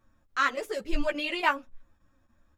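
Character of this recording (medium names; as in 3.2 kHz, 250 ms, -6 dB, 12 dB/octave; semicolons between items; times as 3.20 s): chopped level 3.5 Hz, depth 60%, duty 90%; a shimmering, thickened sound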